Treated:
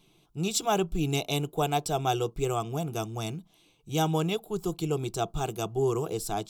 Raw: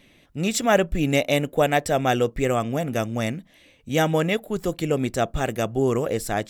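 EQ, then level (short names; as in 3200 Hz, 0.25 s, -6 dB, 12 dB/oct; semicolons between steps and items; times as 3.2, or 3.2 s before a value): dynamic EQ 3800 Hz, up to +4 dB, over -40 dBFS, Q 1.1; fixed phaser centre 370 Hz, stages 8; -3.0 dB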